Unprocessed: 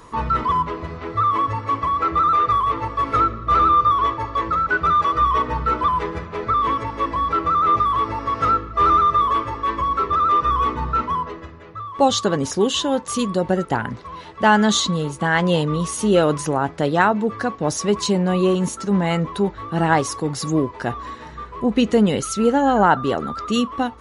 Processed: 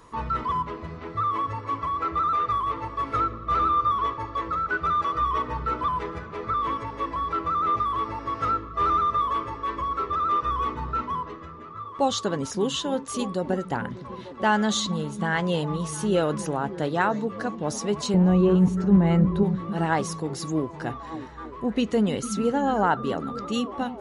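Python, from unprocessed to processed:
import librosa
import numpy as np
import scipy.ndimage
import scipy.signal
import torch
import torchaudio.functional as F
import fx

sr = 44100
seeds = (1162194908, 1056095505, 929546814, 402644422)

y = fx.riaa(x, sr, side='playback', at=(18.14, 19.43))
y = fx.echo_stepped(y, sr, ms=298, hz=170.0, octaves=0.7, feedback_pct=70, wet_db=-7.5)
y = y * 10.0 ** (-7.0 / 20.0)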